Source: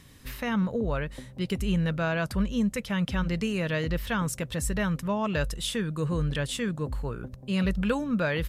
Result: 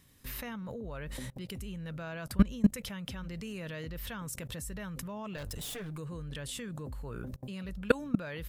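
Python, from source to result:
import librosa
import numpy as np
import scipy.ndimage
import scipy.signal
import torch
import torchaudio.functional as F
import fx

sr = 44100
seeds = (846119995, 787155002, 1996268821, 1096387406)

y = fx.lower_of_two(x, sr, delay_ms=6.7, at=(5.37, 5.98))
y = fx.high_shelf(y, sr, hz=11000.0, db=12.0)
y = fx.level_steps(y, sr, step_db=23)
y = y * 10.0 ** (6.0 / 20.0)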